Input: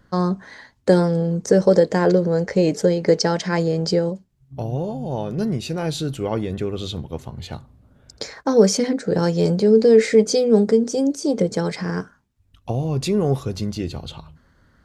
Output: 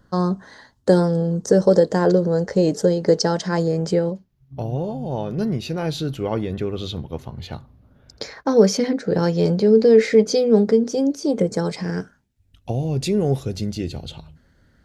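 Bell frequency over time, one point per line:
bell -11 dB 0.5 oct
3.6 s 2300 Hz
4.11 s 8200 Hz
11.23 s 8200 Hz
11.89 s 1100 Hz

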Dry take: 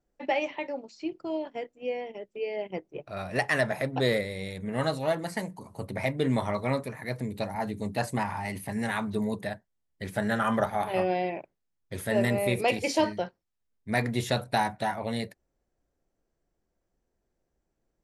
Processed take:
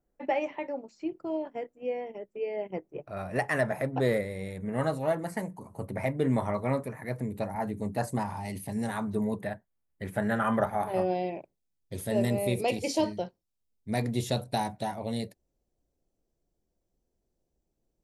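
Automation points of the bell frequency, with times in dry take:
bell -11.5 dB 1.5 oct
7.84 s 4000 Hz
8.6 s 1300 Hz
9.32 s 4900 Hz
10.62 s 4900 Hz
11.23 s 1600 Hz

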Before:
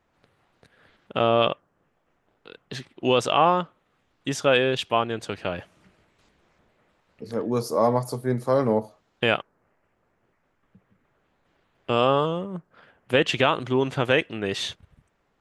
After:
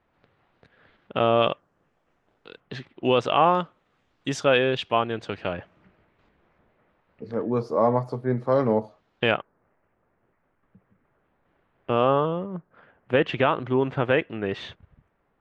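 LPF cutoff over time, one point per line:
3500 Hz
from 1.47 s 7800 Hz
from 2.6 s 3200 Hz
from 3.55 s 6800 Hz
from 4.44 s 3800 Hz
from 5.53 s 2300 Hz
from 8.52 s 4100 Hz
from 9.31 s 2100 Hz

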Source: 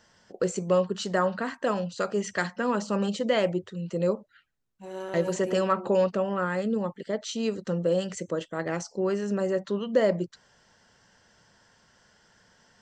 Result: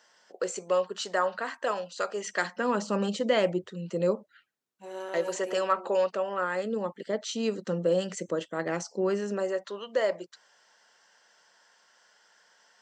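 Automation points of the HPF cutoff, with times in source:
2.17 s 510 Hz
2.81 s 180 Hz
4.13 s 180 Hz
5.33 s 490 Hz
6.26 s 490 Hz
7.24 s 180 Hz
9.17 s 180 Hz
9.62 s 600 Hz

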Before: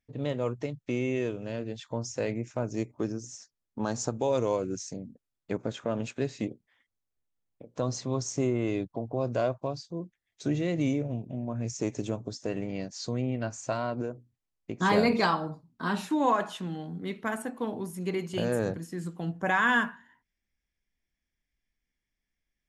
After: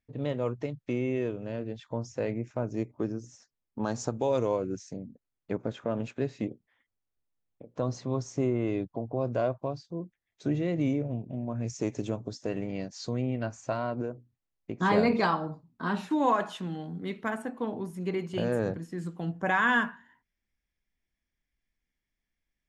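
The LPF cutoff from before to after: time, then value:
LPF 6 dB/oct
3300 Hz
from 0.93 s 1900 Hz
from 3.84 s 4300 Hz
from 4.47 s 2100 Hz
from 11.34 s 4900 Hz
from 13.46 s 2600 Hz
from 16.11 s 6500 Hz
from 17.3 s 2900 Hz
from 18.98 s 4900 Hz

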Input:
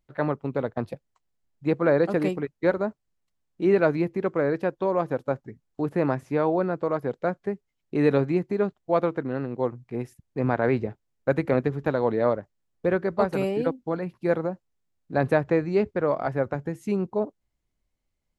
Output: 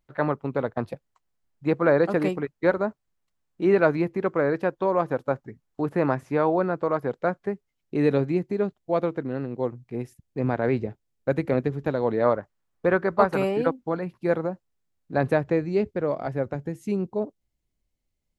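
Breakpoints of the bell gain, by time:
bell 1200 Hz 1.6 oct
7.42 s +3.5 dB
8.09 s -4 dB
11.99 s -4 dB
12.39 s +7.5 dB
13.65 s +7.5 dB
14.05 s +0.5 dB
15.17 s +0.5 dB
15.66 s -6 dB

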